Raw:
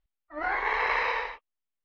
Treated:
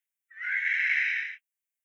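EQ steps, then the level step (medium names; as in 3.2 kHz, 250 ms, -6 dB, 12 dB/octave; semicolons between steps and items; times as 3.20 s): rippled Chebyshev high-pass 1.5 kHz, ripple 3 dB; treble shelf 2.6 kHz +10 dB; static phaser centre 1.9 kHz, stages 4; +1.5 dB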